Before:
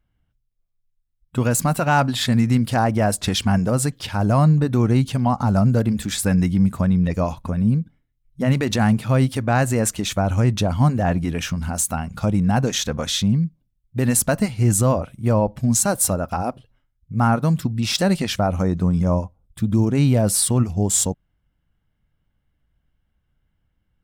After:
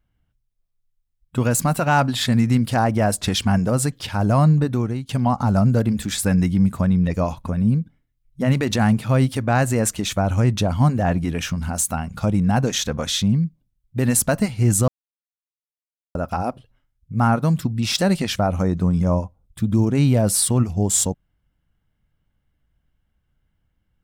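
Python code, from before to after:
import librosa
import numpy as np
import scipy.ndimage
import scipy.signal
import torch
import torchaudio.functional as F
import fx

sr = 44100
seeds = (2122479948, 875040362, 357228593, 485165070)

y = fx.edit(x, sr, fx.fade_out_to(start_s=4.61, length_s=0.48, floor_db=-20.5),
    fx.silence(start_s=14.88, length_s=1.27), tone=tone)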